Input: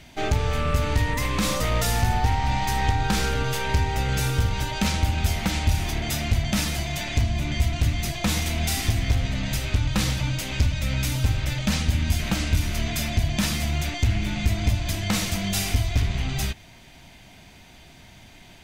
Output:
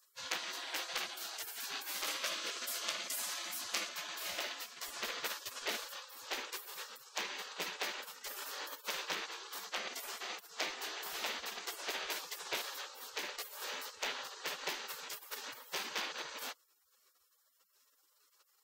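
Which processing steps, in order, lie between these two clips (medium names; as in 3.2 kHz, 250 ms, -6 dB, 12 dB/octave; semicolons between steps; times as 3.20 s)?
spectral gate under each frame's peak -30 dB weak; peaking EQ 10 kHz -9.5 dB 1.2 oct, from 2.07 s -2.5 dB, from 3.89 s -13 dB; trim +2 dB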